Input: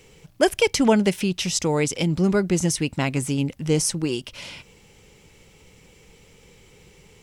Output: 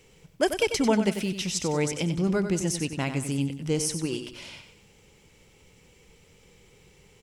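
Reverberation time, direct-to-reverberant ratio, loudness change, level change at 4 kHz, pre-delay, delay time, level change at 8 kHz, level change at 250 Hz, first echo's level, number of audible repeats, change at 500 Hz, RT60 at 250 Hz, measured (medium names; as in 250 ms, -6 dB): no reverb, no reverb, -5.0 dB, -5.0 dB, no reverb, 94 ms, -5.0 dB, -4.5 dB, -9.0 dB, 4, -5.0 dB, no reverb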